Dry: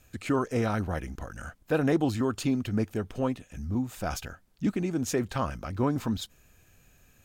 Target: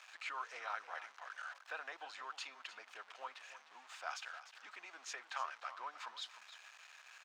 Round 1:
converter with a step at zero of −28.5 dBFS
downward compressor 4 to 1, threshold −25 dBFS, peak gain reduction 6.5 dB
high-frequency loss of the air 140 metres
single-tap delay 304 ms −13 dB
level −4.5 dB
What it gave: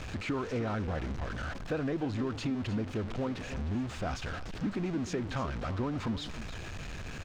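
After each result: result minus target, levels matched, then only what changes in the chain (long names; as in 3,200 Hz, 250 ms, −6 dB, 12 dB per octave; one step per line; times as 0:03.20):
1,000 Hz band −8.0 dB; converter with a step at zero: distortion +10 dB
add after downward compressor: high-pass filter 890 Hz 24 dB per octave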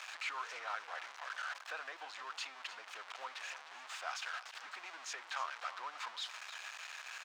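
converter with a step at zero: distortion +10 dB
change: converter with a step at zero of −40 dBFS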